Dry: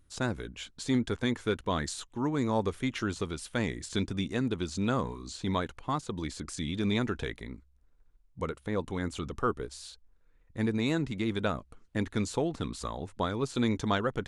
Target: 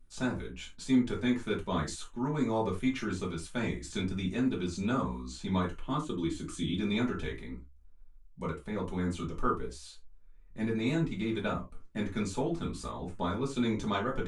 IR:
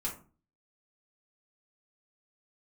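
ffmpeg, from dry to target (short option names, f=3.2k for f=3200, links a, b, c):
-filter_complex "[0:a]asettb=1/sr,asplit=3[a][b][c];[a]atrim=end=5.784[d];[b]atrim=start=5.78:end=6.79,asetpts=PTS-STARTPTS,afade=t=in:d=0.004:c=qsin,afade=t=out:st=1.006:d=0.004:c=qsin,equalizer=f=315:t=o:w=0.33:g=10,equalizer=f=800:t=o:w=0.33:g=-5,equalizer=f=2k:t=o:w=0.33:g=-4,equalizer=f=3.15k:t=o:w=0.33:g=9,equalizer=f=5k:t=o:w=0.33:g=-8[e];[c]atrim=start=6.786[f];[d][e]acrossfade=d=0.004:c1=hsin:c2=qsin[g];[g][f]acrossfade=d=0.004:c1=qsin:c2=hsin[h];[1:a]atrim=start_sample=2205,atrim=end_sample=4410[i];[h][i]afir=irnorm=-1:irlink=0,volume=-4.5dB"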